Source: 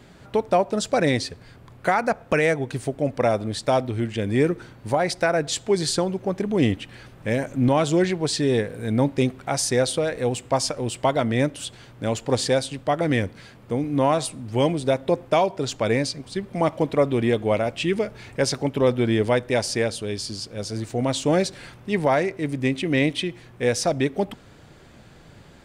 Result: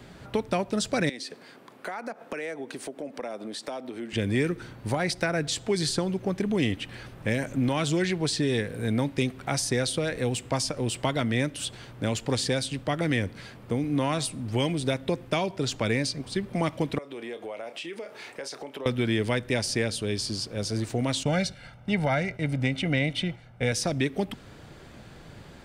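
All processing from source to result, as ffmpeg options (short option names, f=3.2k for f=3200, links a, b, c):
-filter_complex "[0:a]asettb=1/sr,asplit=3[a][b][c];[a]atrim=end=1.094[d];[b]atrim=start=1.09:end=4.13,asetpts=PTS-STARTPTS,afade=t=in:d=0.004:c=qsin,afade=t=out:st=3.036:d=0.004:c=qsin,highpass=f=220:w=0.5412,highpass=f=220:w=1.3066,acompressor=threshold=-36dB:ratio=3:attack=3.2:release=140:knee=1:detection=peak[e];[c]atrim=start=4.126[f];[d][e]acrossfade=d=0.004:c1=hsin:c2=qsin[g];[g][f]acrossfade=d=0.004:c1=qsin:c2=hsin,asettb=1/sr,asplit=3[h][i][j];[h]atrim=end=16.984[k];[i]atrim=start=16.98:end=18.86,asetpts=PTS-STARTPTS,afade=t=in:d=0.004:c=qsin,afade=t=out:st=1.876:d=0.004:c=qsin,highpass=410,asplit=2[l][m];[m]adelay=30,volume=-13dB[n];[l][n]amix=inputs=2:normalize=0,atrim=end_sample=82908,acompressor=threshold=-36dB:ratio=5:attack=3.2:release=140:knee=1:detection=peak[o];[j]atrim=start=18.856[p];[k][o]acrossfade=d=0.004:c1=hsin:c2=qsin[q];[q][p]acrossfade=d=0.004:c1=qsin:c2=hsin,asettb=1/sr,asplit=3[r][s][t];[r]atrim=end=21.234[u];[s]atrim=start=21.23:end=23.72,asetpts=PTS-STARTPTS,afade=t=in:d=0.004:c=qsin,afade=t=out:st=2.486:d=0.004:c=qsin,aemphasis=mode=reproduction:type=cd,agate=range=-8dB:threshold=-41dB:ratio=16:release=100:detection=peak,aecho=1:1:1.4:0.68,atrim=end_sample=109809[v];[t]atrim=start=23.716[w];[u][v]acrossfade=d=0.004:c1=hsin:c2=qsin[x];[x][w]acrossfade=d=0.004:c1=qsin:c2=hsin,equalizer=f=7.1k:t=o:w=0.27:g=-2.5,acrossover=split=340|1400[y][z][aa];[y]acompressor=threshold=-27dB:ratio=4[ab];[z]acompressor=threshold=-35dB:ratio=4[ac];[aa]acompressor=threshold=-29dB:ratio=4[ad];[ab][ac][ad]amix=inputs=3:normalize=0,volume=1.5dB"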